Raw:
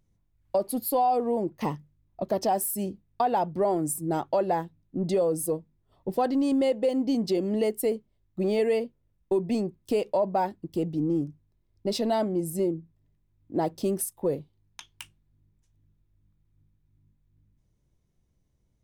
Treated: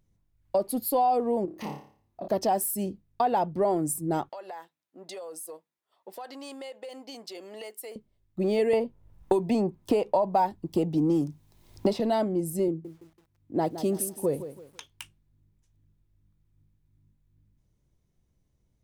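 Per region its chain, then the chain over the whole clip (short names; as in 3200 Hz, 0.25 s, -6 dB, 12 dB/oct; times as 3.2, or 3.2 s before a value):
1.45–2.28 HPF 110 Hz 6 dB/oct + compressor 2:1, threshold -38 dBFS + flutter echo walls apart 4.9 m, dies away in 0.47 s
4.29–7.96 HPF 860 Hz + compressor 10:1, threshold -36 dBFS
8.73–12 bell 880 Hz +9 dB 0.74 oct + three-band squash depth 100%
12.68–14.91 HPF 48 Hz 24 dB/oct + lo-fi delay 0.166 s, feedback 35%, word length 9-bit, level -12 dB
whole clip: dry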